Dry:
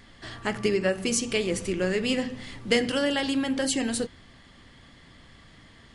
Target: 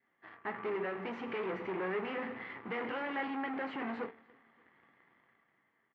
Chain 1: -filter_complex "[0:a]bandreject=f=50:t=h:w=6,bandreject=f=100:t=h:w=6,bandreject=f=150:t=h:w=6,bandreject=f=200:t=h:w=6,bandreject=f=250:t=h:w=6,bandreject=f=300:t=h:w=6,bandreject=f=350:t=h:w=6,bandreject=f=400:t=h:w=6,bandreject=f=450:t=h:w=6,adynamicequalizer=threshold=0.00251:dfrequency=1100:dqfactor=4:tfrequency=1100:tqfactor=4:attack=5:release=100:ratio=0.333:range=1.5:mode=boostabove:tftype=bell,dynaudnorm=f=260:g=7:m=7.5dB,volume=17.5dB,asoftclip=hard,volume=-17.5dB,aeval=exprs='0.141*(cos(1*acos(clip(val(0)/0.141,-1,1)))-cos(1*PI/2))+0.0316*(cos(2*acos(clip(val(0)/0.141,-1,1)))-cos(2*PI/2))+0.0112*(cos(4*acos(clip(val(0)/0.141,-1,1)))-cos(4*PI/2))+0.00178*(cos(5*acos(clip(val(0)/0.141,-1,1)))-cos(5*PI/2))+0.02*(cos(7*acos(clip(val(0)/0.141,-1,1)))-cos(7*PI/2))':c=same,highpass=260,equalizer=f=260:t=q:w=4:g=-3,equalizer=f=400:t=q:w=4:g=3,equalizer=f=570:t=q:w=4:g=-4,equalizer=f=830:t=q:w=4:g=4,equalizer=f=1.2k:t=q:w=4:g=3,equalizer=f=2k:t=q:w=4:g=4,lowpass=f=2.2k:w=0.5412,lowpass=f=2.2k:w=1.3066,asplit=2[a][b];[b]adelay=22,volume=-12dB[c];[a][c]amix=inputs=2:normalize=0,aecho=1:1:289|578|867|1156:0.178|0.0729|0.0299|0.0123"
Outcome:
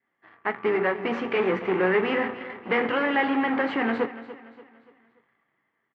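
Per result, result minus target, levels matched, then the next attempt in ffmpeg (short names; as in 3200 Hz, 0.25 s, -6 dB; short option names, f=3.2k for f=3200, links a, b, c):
echo-to-direct +12 dB; overloaded stage: distortion -7 dB
-filter_complex "[0:a]bandreject=f=50:t=h:w=6,bandreject=f=100:t=h:w=6,bandreject=f=150:t=h:w=6,bandreject=f=200:t=h:w=6,bandreject=f=250:t=h:w=6,bandreject=f=300:t=h:w=6,bandreject=f=350:t=h:w=6,bandreject=f=400:t=h:w=6,bandreject=f=450:t=h:w=6,adynamicequalizer=threshold=0.00251:dfrequency=1100:dqfactor=4:tfrequency=1100:tqfactor=4:attack=5:release=100:ratio=0.333:range=1.5:mode=boostabove:tftype=bell,dynaudnorm=f=260:g=7:m=7.5dB,volume=17.5dB,asoftclip=hard,volume=-17.5dB,aeval=exprs='0.141*(cos(1*acos(clip(val(0)/0.141,-1,1)))-cos(1*PI/2))+0.0316*(cos(2*acos(clip(val(0)/0.141,-1,1)))-cos(2*PI/2))+0.0112*(cos(4*acos(clip(val(0)/0.141,-1,1)))-cos(4*PI/2))+0.00178*(cos(5*acos(clip(val(0)/0.141,-1,1)))-cos(5*PI/2))+0.02*(cos(7*acos(clip(val(0)/0.141,-1,1)))-cos(7*PI/2))':c=same,highpass=260,equalizer=f=260:t=q:w=4:g=-3,equalizer=f=400:t=q:w=4:g=3,equalizer=f=570:t=q:w=4:g=-4,equalizer=f=830:t=q:w=4:g=4,equalizer=f=1.2k:t=q:w=4:g=3,equalizer=f=2k:t=q:w=4:g=4,lowpass=f=2.2k:w=0.5412,lowpass=f=2.2k:w=1.3066,asplit=2[a][b];[b]adelay=22,volume=-12dB[c];[a][c]amix=inputs=2:normalize=0,aecho=1:1:289|578:0.0447|0.0183"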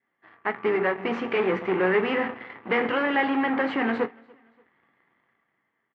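overloaded stage: distortion -7 dB
-filter_complex "[0:a]bandreject=f=50:t=h:w=6,bandreject=f=100:t=h:w=6,bandreject=f=150:t=h:w=6,bandreject=f=200:t=h:w=6,bandreject=f=250:t=h:w=6,bandreject=f=300:t=h:w=6,bandreject=f=350:t=h:w=6,bandreject=f=400:t=h:w=6,bandreject=f=450:t=h:w=6,adynamicequalizer=threshold=0.00251:dfrequency=1100:dqfactor=4:tfrequency=1100:tqfactor=4:attack=5:release=100:ratio=0.333:range=1.5:mode=boostabove:tftype=bell,dynaudnorm=f=260:g=7:m=7.5dB,volume=28.5dB,asoftclip=hard,volume=-28.5dB,aeval=exprs='0.141*(cos(1*acos(clip(val(0)/0.141,-1,1)))-cos(1*PI/2))+0.0316*(cos(2*acos(clip(val(0)/0.141,-1,1)))-cos(2*PI/2))+0.0112*(cos(4*acos(clip(val(0)/0.141,-1,1)))-cos(4*PI/2))+0.00178*(cos(5*acos(clip(val(0)/0.141,-1,1)))-cos(5*PI/2))+0.02*(cos(7*acos(clip(val(0)/0.141,-1,1)))-cos(7*PI/2))':c=same,highpass=260,equalizer=f=260:t=q:w=4:g=-3,equalizer=f=400:t=q:w=4:g=3,equalizer=f=570:t=q:w=4:g=-4,equalizer=f=830:t=q:w=4:g=4,equalizer=f=1.2k:t=q:w=4:g=3,equalizer=f=2k:t=q:w=4:g=4,lowpass=f=2.2k:w=0.5412,lowpass=f=2.2k:w=1.3066,asplit=2[a][b];[b]adelay=22,volume=-12dB[c];[a][c]amix=inputs=2:normalize=0,aecho=1:1:289|578:0.0447|0.0183"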